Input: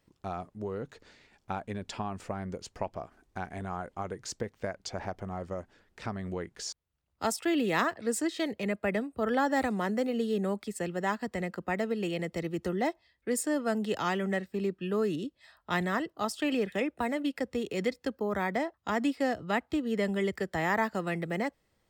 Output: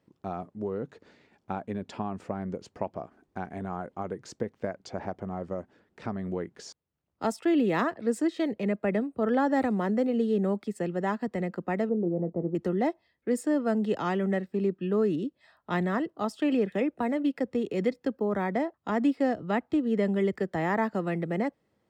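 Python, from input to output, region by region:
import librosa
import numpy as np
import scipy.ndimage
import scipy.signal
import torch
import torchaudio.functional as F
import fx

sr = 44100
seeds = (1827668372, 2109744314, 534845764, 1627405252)

y = fx.chain(x, sr, fx.cheby2_lowpass(hz=3200.0, order=4, stop_db=60),
    fx.doubler(ms=23.0, db=-12.0), at=(11.89, 12.55))
y = scipy.signal.sosfilt(scipy.signal.butter(2, 190.0, 'highpass', fs=sr, output='sos'), y)
y = fx.tilt_eq(y, sr, slope=-3.0)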